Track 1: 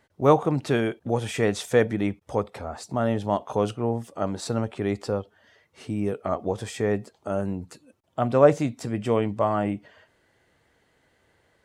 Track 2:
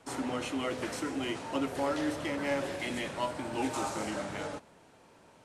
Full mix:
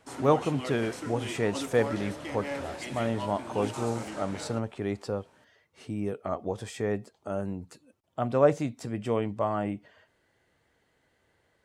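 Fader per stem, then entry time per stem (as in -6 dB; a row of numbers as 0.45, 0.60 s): -5.0, -3.5 dB; 0.00, 0.00 s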